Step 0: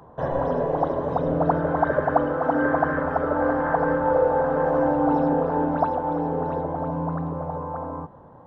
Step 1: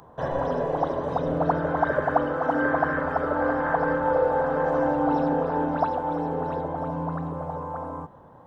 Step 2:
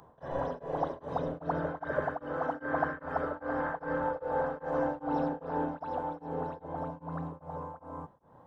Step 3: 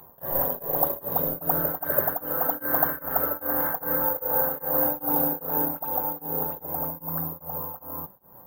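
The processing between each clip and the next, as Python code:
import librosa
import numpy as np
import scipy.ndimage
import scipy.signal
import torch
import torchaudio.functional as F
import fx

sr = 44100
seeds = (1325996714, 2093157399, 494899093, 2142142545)

y1 = fx.high_shelf(x, sr, hz=2200.0, db=11.0)
y1 = F.gain(torch.from_numpy(y1), -3.0).numpy()
y2 = y1 * np.abs(np.cos(np.pi * 2.5 * np.arange(len(y1)) / sr))
y2 = F.gain(torch.from_numpy(y2), -6.0).numpy()
y3 = fx.comb_fb(y2, sr, f0_hz=190.0, decay_s=0.16, harmonics='all', damping=0.0, mix_pct=60)
y3 = (np.kron(scipy.signal.resample_poly(y3, 1, 3), np.eye(3)[0]) * 3)[:len(y3)]
y3 = F.gain(torch.from_numpy(y3), 8.5).numpy()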